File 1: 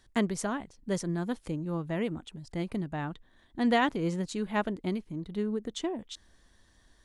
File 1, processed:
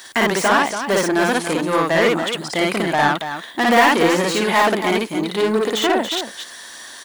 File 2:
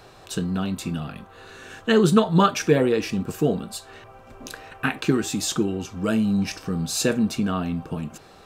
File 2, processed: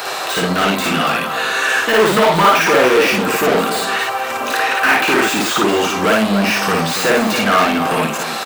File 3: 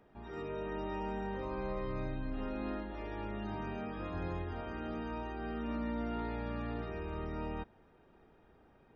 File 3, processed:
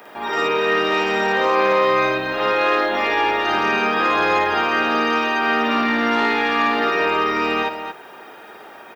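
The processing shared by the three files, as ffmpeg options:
ffmpeg -i in.wav -filter_complex "[0:a]asplit=2[link_01][link_02];[link_02]highpass=frequency=720:poles=1,volume=36dB,asoftclip=type=tanh:threshold=-3dB[link_03];[link_01][link_03]amix=inputs=2:normalize=0,lowpass=frequency=2300:poles=1,volume=-6dB,aemphasis=mode=production:type=riaa,acrossover=split=2700[link_04][link_05];[link_05]acompressor=threshold=-25dB:ratio=4:attack=1:release=60[link_06];[link_04][link_06]amix=inputs=2:normalize=0,asplit=2[link_07][link_08];[link_08]aecho=0:1:55.39|282.8:1|0.398[link_09];[link_07][link_09]amix=inputs=2:normalize=0,volume=-2.5dB" out.wav

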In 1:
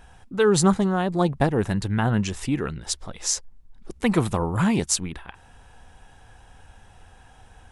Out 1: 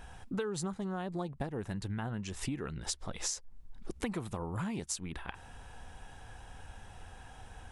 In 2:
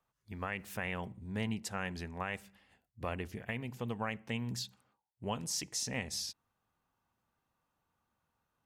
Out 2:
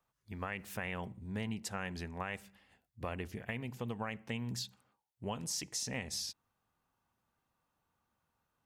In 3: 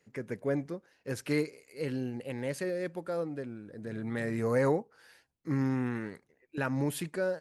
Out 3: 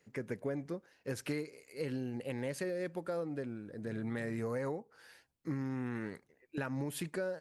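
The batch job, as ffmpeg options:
ffmpeg -i in.wav -af "acompressor=threshold=-33dB:ratio=16" out.wav

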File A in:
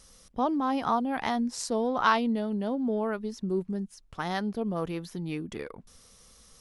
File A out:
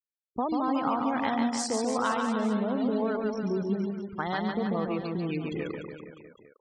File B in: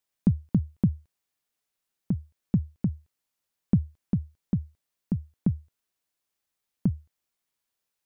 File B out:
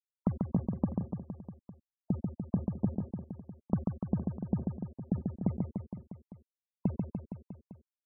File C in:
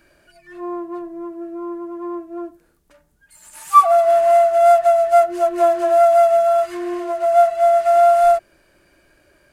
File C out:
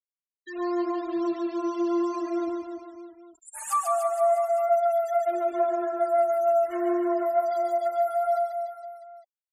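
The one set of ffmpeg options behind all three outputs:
ffmpeg -i in.wav -filter_complex "[0:a]acompressor=threshold=-28dB:ratio=6,acrusher=bits=6:mix=0:aa=0.000001,afftfilt=real='re*gte(hypot(re,im),0.0141)':imag='im*gte(hypot(re,im),0.0141)':win_size=1024:overlap=0.75,highpass=frequency=100:poles=1,asplit=2[link_01][link_02];[link_02]aecho=0:1:140|294|463.4|649.7|854.7:0.631|0.398|0.251|0.158|0.1[link_03];[link_01][link_03]amix=inputs=2:normalize=0,volume=2.5dB" out.wav

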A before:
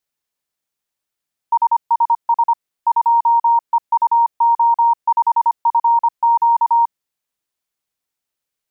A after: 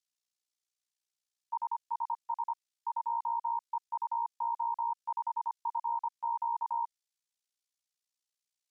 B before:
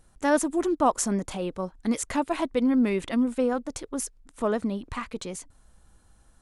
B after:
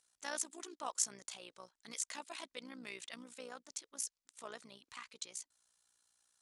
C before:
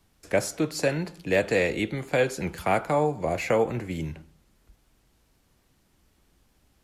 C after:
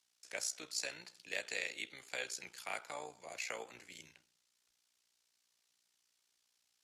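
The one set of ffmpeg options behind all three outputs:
ffmpeg -i in.wav -af "bandpass=frequency=5700:width_type=q:width=0.99:csg=0,tremolo=f=60:d=0.75" out.wav

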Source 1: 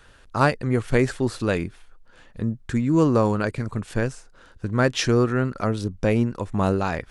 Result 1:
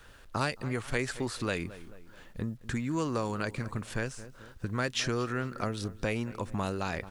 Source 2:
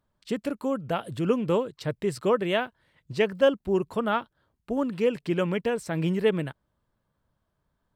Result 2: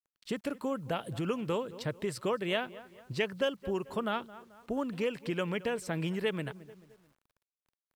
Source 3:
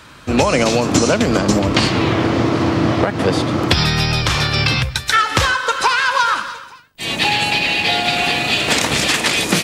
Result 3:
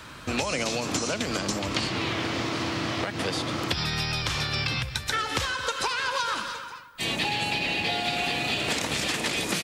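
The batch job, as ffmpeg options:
ffmpeg -i in.wav -filter_complex "[0:a]asplit=2[link_01][link_02];[link_02]adelay=218,lowpass=frequency=4200:poles=1,volume=-21.5dB,asplit=2[link_03][link_04];[link_04]adelay=218,lowpass=frequency=4200:poles=1,volume=0.43,asplit=2[link_05][link_06];[link_06]adelay=218,lowpass=frequency=4200:poles=1,volume=0.43[link_07];[link_01][link_03][link_05][link_07]amix=inputs=4:normalize=0,acrusher=bits=10:mix=0:aa=0.000001,acrossover=split=750|2100[link_08][link_09][link_10];[link_08]acompressor=threshold=-30dB:ratio=4[link_11];[link_09]acompressor=threshold=-35dB:ratio=4[link_12];[link_10]acompressor=threshold=-28dB:ratio=4[link_13];[link_11][link_12][link_13]amix=inputs=3:normalize=0,volume=-2dB" out.wav

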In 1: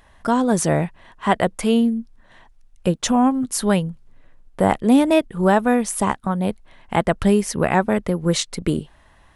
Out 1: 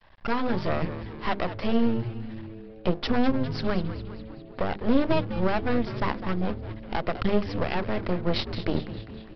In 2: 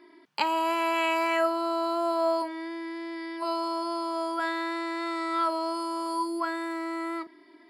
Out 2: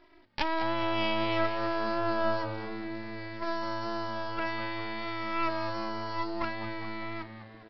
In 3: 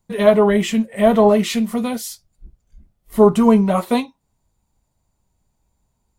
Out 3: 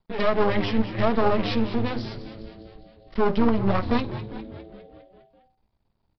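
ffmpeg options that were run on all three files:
ffmpeg -i in.wav -filter_complex "[0:a]bandreject=frequency=50:width_type=h:width=6,bandreject=frequency=100:width_type=h:width=6,bandreject=frequency=150:width_type=h:width=6,bandreject=frequency=200:width_type=h:width=6,bandreject=frequency=250:width_type=h:width=6,bandreject=frequency=300:width_type=h:width=6,bandreject=frequency=350:width_type=h:width=6,bandreject=frequency=400:width_type=h:width=6,bandreject=frequency=450:width_type=h:width=6,alimiter=limit=-8.5dB:level=0:latency=1:release=174,aresample=11025,aeval=exprs='max(val(0),0)':channel_layout=same,aresample=44100,asplit=8[link_01][link_02][link_03][link_04][link_05][link_06][link_07][link_08];[link_02]adelay=203,afreqshift=-110,volume=-11.5dB[link_09];[link_03]adelay=406,afreqshift=-220,volume=-15.8dB[link_10];[link_04]adelay=609,afreqshift=-330,volume=-20.1dB[link_11];[link_05]adelay=812,afreqshift=-440,volume=-24.4dB[link_12];[link_06]adelay=1015,afreqshift=-550,volume=-28.7dB[link_13];[link_07]adelay=1218,afreqshift=-660,volume=-33dB[link_14];[link_08]adelay=1421,afreqshift=-770,volume=-37.3dB[link_15];[link_01][link_09][link_10][link_11][link_12][link_13][link_14][link_15]amix=inputs=8:normalize=0" out.wav

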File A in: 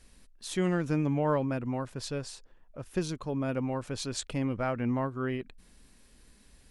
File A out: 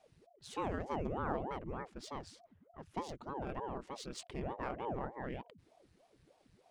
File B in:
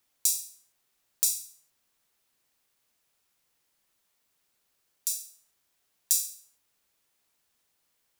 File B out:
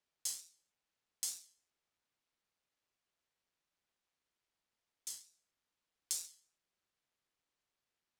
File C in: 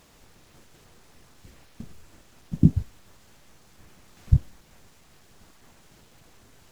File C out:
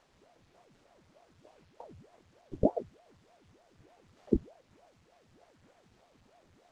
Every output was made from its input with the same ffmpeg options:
ffmpeg -i in.wav -af "adynamicsmooth=sensitivity=8:basefreq=6600,aeval=exprs='val(0)*sin(2*PI*400*n/s+400*0.8/3.3*sin(2*PI*3.3*n/s))':channel_layout=same,volume=-7dB" out.wav

